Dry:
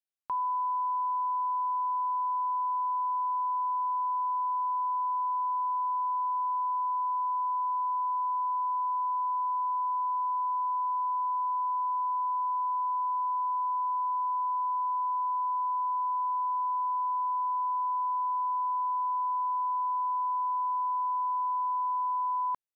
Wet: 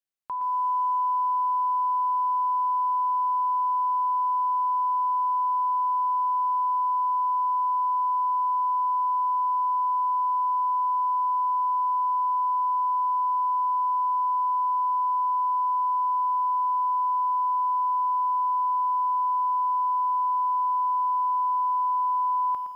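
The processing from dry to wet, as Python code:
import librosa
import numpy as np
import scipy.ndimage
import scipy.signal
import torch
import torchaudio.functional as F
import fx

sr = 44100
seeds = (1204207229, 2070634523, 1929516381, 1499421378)

y = fx.echo_feedback(x, sr, ms=168, feedback_pct=32, wet_db=-18.0)
y = fx.echo_crushed(y, sr, ms=116, feedback_pct=35, bits=10, wet_db=-8.5)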